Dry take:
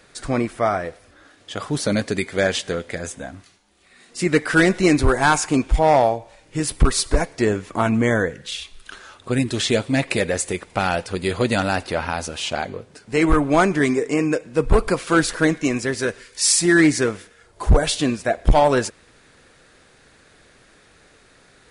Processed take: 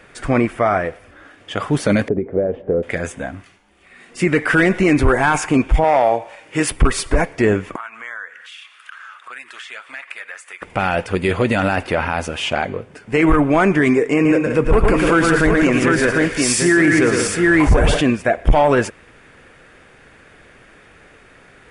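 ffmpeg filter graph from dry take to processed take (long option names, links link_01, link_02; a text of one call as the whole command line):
ffmpeg -i in.wav -filter_complex "[0:a]asettb=1/sr,asplit=3[link_01][link_02][link_03];[link_01]atrim=end=2.084[link_04];[link_02]atrim=start=2.08:end=2.83,asetpts=PTS-STARTPTS,afade=type=in:duration=0.004:curve=qsin,afade=type=out:start_time=0.746:duration=0.004:curve=qsin,acompressor=threshold=-22dB:ratio=10:attack=3.2:release=140:knee=1:detection=peak,lowpass=frequency=500:width_type=q:width=2[link_05];[link_03]atrim=start=2.826[link_06];[link_04][link_05]acrossfade=duration=0.004:curve1=hsin:curve2=qsin[link_07];[link_07][link_06]acrossfade=duration=0.004:curve1=qsin:curve2=hsin,asettb=1/sr,asplit=3[link_08][link_09][link_10];[link_08]atrim=end=5.844[link_11];[link_09]atrim=start=5.84:end=6.71,asetpts=PTS-STARTPTS,afade=type=in:duration=0.004:curve=qsin,afade=type=out:start_time=0.866:duration=0.004:curve=qsin,highpass=frequency=510:poles=1,acontrast=31[link_12];[link_10]atrim=start=6.706[link_13];[link_11][link_12]acrossfade=duration=0.004:curve1=hsin:curve2=qsin[link_14];[link_14][link_13]acrossfade=duration=0.004:curve1=qsin:curve2=hsin,asettb=1/sr,asplit=3[link_15][link_16][link_17];[link_15]atrim=end=7.764[link_18];[link_16]atrim=start=7.76:end=10.62,asetpts=PTS-STARTPTS,afade=type=in:duration=0.004:curve=qsin,afade=type=out:start_time=2.856:duration=0.004:curve=qsin,highpass=frequency=1300:width_type=q:width=2.4,acompressor=threshold=-44dB:ratio=2.5:attack=3.2:release=140:knee=1:detection=peak[link_19];[link_17]atrim=start=10.616[link_20];[link_18][link_19]acrossfade=duration=0.004:curve1=hsin:curve2=qsin[link_21];[link_21][link_20]acrossfade=duration=0.004:curve1=qsin:curve2=hsin,asettb=1/sr,asplit=3[link_22][link_23][link_24];[link_22]atrim=end=14.144[link_25];[link_23]atrim=start=14.14:end=18.01,asetpts=PTS-STARTPTS,afade=type=in:duration=0.004:curve=qsin,afade=type=out:start_time=3.866:duration=0.004:curve=qsin,acompressor=mode=upward:threshold=-20dB:ratio=2.5:attack=3.2:release=140:knee=2.83:detection=peak,aecho=1:1:113|174|333|750:0.473|0.316|0.112|0.562,atrim=end_sample=170667[link_26];[link_24]atrim=start=18.006[link_27];[link_25][link_26]acrossfade=duration=0.004:curve1=hsin:curve2=qsin[link_28];[link_28][link_27]acrossfade=duration=0.004:curve1=qsin:curve2=hsin,highshelf=frequency=3400:width_type=q:width=1.5:gain=-7.5,alimiter=limit=-12dB:level=0:latency=1:release=19,bandreject=frequency=4000:width=13,volume=6dB" out.wav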